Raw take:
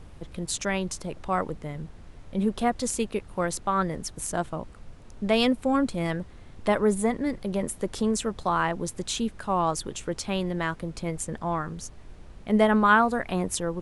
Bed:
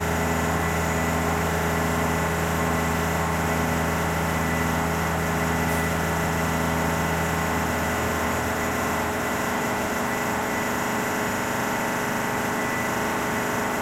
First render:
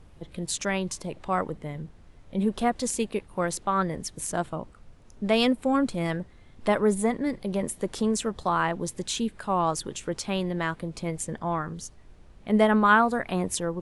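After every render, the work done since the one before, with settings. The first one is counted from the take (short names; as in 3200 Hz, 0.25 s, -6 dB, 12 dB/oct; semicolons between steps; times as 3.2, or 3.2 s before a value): noise print and reduce 6 dB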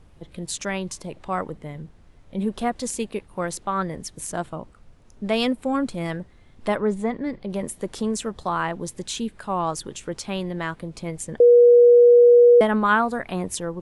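6.76–7.5 air absorption 110 m; 11.4–12.61 bleep 481 Hz -8.5 dBFS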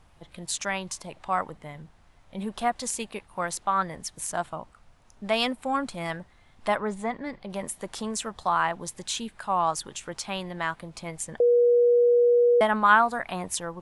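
resonant low shelf 580 Hz -7 dB, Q 1.5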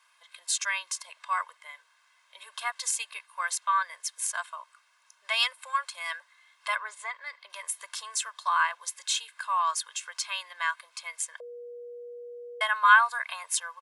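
HPF 1100 Hz 24 dB/oct; comb 1.9 ms, depth 90%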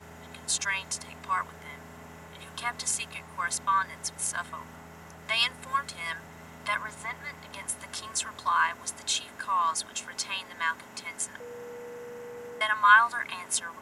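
add bed -23.5 dB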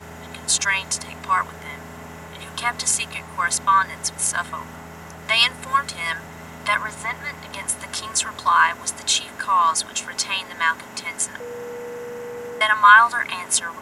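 gain +9 dB; limiter -1 dBFS, peak gain reduction 2.5 dB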